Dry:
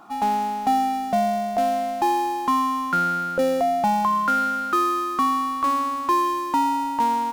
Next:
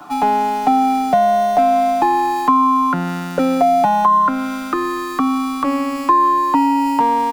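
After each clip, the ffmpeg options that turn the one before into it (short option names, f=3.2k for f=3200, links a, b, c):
-filter_complex "[0:a]aecho=1:1:6.8:0.86,acrossover=split=130|2900[a][b][c];[c]alimiter=level_in=11dB:limit=-24dB:level=0:latency=1,volume=-11dB[d];[a][b][d]amix=inputs=3:normalize=0,acrossover=split=150|1200[e][f][g];[e]acompressor=threshold=-49dB:ratio=4[h];[f]acompressor=threshold=-20dB:ratio=4[i];[g]acompressor=threshold=-36dB:ratio=4[j];[h][i][j]amix=inputs=3:normalize=0,volume=8.5dB"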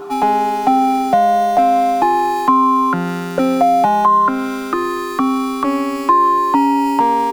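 -af "aeval=exprs='val(0)+0.0355*sin(2*PI*400*n/s)':c=same,volume=1dB"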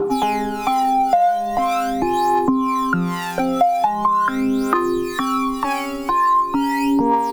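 -filter_complex "[0:a]aphaser=in_gain=1:out_gain=1:delay=1.5:decay=0.77:speed=0.42:type=triangular,acrossover=split=610[a][b];[a]aeval=exprs='val(0)*(1-0.7/2+0.7/2*cos(2*PI*2*n/s))':c=same[c];[b]aeval=exprs='val(0)*(1-0.7/2-0.7/2*cos(2*PI*2*n/s))':c=same[d];[c][d]amix=inputs=2:normalize=0,acompressor=threshold=-15dB:ratio=6,volume=1dB"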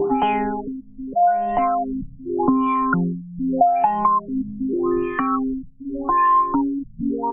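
-af "afftfilt=real='re*lt(b*sr/1024,220*pow(3500/220,0.5+0.5*sin(2*PI*0.83*pts/sr)))':imag='im*lt(b*sr/1024,220*pow(3500/220,0.5+0.5*sin(2*PI*0.83*pts/sr)))':win_size=1024:overlap=0.75"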